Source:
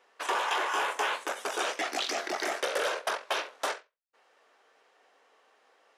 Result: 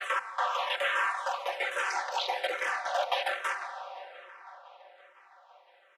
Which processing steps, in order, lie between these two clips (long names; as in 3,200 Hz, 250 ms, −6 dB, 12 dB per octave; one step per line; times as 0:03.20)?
slices reordered back to front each 190 ms, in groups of 2
comb filter 4.9 ms, depth 78%
frequency shifter +140 Hz
bass and treble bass −3 dB, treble −10 dB
delay with a low-pass on its return 512 ms, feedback 63%, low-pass 3,600 Hz, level −20 dB
on a send at −9 dB: convolution reverb RT60 4.5 s, pre-delay 36 ms
on the sum: frequency shifter mixed with the dry sound −1.2 Hz
level +1.5 dB